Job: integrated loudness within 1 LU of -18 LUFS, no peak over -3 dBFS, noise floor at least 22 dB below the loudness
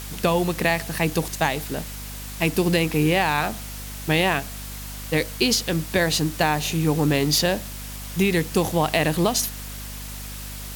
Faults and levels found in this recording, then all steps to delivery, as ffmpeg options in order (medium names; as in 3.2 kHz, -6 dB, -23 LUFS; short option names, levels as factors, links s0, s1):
hum 50 Hz; highest harmonic 250 Hz; hum level -34 dBFS; noise floor -35 dBFS; noise floor target -45 dBFS; loudness -22.5 LUFS; peak level -4.5 dBFS; loudness target -18.0 LUFS
-> -af "bandreject=f=50:t=h:w=6,bandreject=f=100:t=h:w=6,bandreject=f=150:t=h:w=6,bandreject=f=200:t=h:w=6,bandreject=f=250:t=h:w=6"
-af "afftdn=nr=10:nf=-35"
-af "volume=1.68,alimiter=limit=0.708:level=0:latency=1"